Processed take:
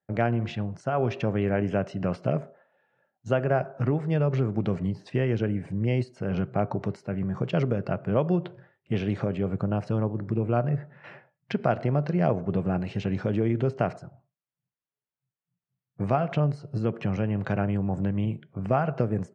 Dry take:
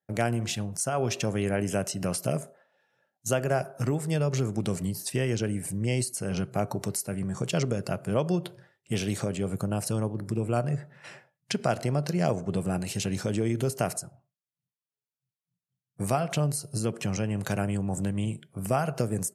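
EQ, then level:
low-pass filter 2,300 Hz 12 dB per octave
high-frequency loss of the air 88 metres
+2.5 dB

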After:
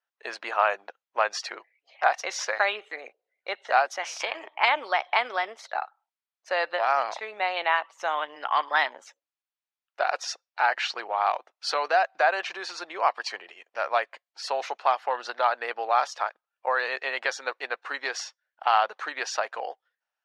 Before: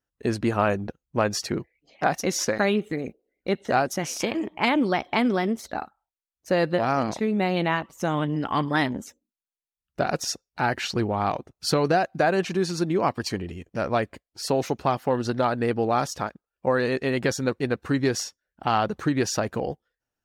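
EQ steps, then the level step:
high-pass filter 690 Hz 24 dB per octave
low-pass filter 3,900 Hz 12 dB per octave
+3.0 dB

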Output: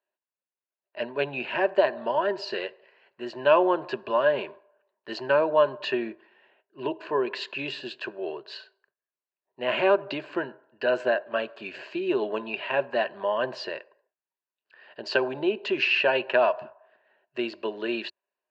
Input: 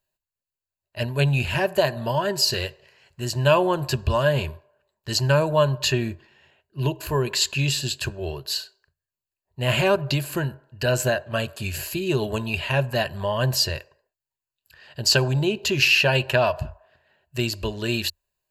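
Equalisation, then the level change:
high-pass filter 280 Hz 24 dB per octave
low-pass filter 2,600 Hz 12 dB per octave
high-frequency loss of the air 140 metres
0.0 dB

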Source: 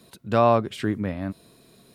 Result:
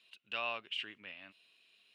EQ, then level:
resonant band-pass 2,800 Hz, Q 8.7
+6.5 dB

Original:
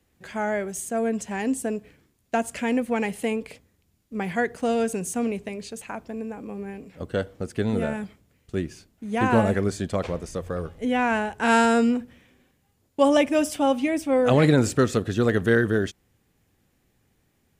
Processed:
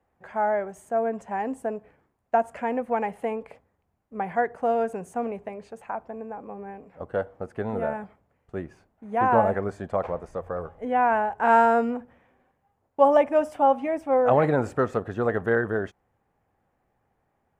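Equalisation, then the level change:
drawn EQ curve 310 Hz 0 dB, 800 Hz +14 dB, 1,800 Hz +3 dB, 3,900 Hz −12 dB
−7.5 dB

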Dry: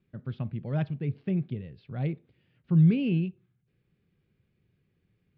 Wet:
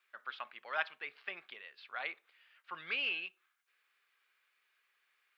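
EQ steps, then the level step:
four-pole ladder high-pass 980 Hz, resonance 35%
+15.0 dB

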